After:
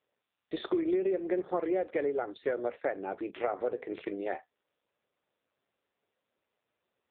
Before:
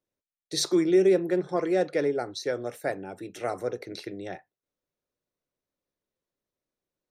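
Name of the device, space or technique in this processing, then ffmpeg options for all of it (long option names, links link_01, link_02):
voicemail: -af "highpass=340,lowpass=3100,acompressor=threshold=-32dB:ratio=8,volume=6dB" -ar 8000 -c:a libopencore_amrnb -b:a 5900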